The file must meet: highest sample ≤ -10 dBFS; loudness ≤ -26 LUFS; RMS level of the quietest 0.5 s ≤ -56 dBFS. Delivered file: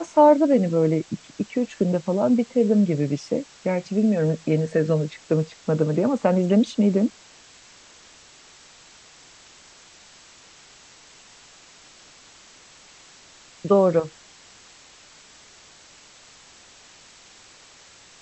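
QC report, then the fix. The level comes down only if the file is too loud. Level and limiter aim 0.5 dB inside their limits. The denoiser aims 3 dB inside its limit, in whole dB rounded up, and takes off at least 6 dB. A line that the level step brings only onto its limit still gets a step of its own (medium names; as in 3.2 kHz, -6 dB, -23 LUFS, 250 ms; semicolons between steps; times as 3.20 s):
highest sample -4.5 dBFS: fail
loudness -21.5 LUFS: fail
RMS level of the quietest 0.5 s -50 dBFS: fail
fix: noise reduction 6 dB, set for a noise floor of -50 dBFS; trim -5 dB; peak limiter -10.5 dBFS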